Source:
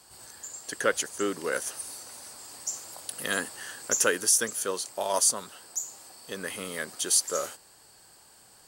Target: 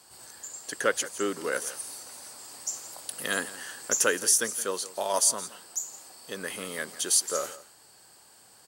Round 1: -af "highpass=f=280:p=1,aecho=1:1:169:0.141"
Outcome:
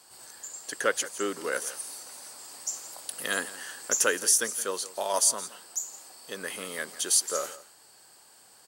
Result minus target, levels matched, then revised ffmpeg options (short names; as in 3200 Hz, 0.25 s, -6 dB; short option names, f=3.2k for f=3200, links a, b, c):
125 Hz band -4.0 dB
-af "highpass=f=110:p=1,aecho=1:1:169:0.141"